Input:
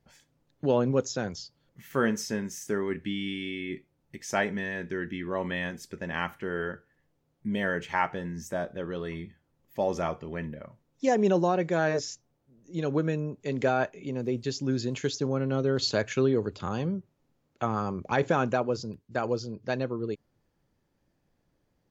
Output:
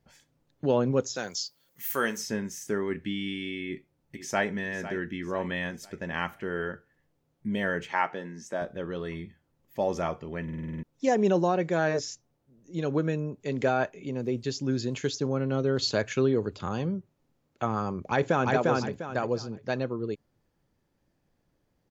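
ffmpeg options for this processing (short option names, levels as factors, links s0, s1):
-filter_complex "[0:a]asplit=3[s0][s1][s2];[s0]afade=t=out:st=1.15:d=0.02[s3];[s1]aemphasis=mode=production:type=riaa,afade=t=in:st=1.15:d=0.02,afade=t=out:st=2.16:d=0.02[s4];[s2]afade=t=in:st=2.16:d=0.02[s5];[s3][s4][s5]amix=inputs=3:normalize=0,asplit=2[s6][s7];[s7]afade=t=in:st=3.64:d=0.01,afade=t=out:st=4.5:d=0.01,aecho=0:1:500|1000|1500|2000:0.237137|0.0948549|0.037942|0.0151768[s8];[s6][s8]amix=inputs=2:normalize=0,asettb=1/sr,asplit=3[s9][s10][s11];[s9]atrim=end=7.884[s12];[s10]atrim=start=7.88:end=8.62,asetpts=PTS-STARTPTS,afade=t=in:d=0.004:c=qsin,afade=t=out:st=0.736:d=0.004:c=qsin,highpass=240,lowpass=7100[s13];[s11]atrim=start=8.616[s14];[s12][s13]acrossfade=d=0.004:c1=hsin:c2=qsin[s15];[s15][s14]acrossfade=d=0.004:c1=qsin:c2=hsin,asplit=2[s16][s17];[s17]afade=t=in:st=18.03:d=0.01,afade=t=out:st=18.53:d=0.01,aecho=0:1:350|700|1050|1400:0.841395|0.252419|0.0757256|0.0227177[s18];[s16][s18]amix=inputs=2:normalize=0,asplit=9[s19][s20][s21][s22][s23][s24][s25][s26][s27];[s19]atrim=end=10.482[s28];[s20]atrim=start=10.428:end=10.482[s29];[s21]atrim=start=10.428:end=10.482[s30];[s22]atrim=start=10.428:end=10.482[s31];[s23]atrim=start=10.428:end=10.482[s32];[s24]atrim=start=10.428:end=10.482[s33];[s25]atrim=start=10.428:end=10.482[s34];[s26]atrim=start=10.428:end=10.482[s35];[s27]atrim=start=10.828[s36];[s28][s29]acrossfade=d=0.004:c1=hsin:c2=hsin[s37];[s37][s30]acrossfade=d=0.004:c1=hsin:c2=hsin[s38];[s38][s31]acrossfade=d=0.004:c1=hsin:c2=hsin[s39];[s39][s32]acrossfade=d=0.004:c1=hsin:c2=hsin[s40];[s40][s33]acrossfade=d=0.004:c1=hsin:c2=hsin[s41];[s41][s34]acrossfade=d=0.004:c1=hsin:c2=hsin[s42];[s42][s35]acrossfade=d=0.004:c1=hsin:c2=hsin[s43];[s43][s36]acrossfade=d=0.004:c1=hsin:c2=hsin"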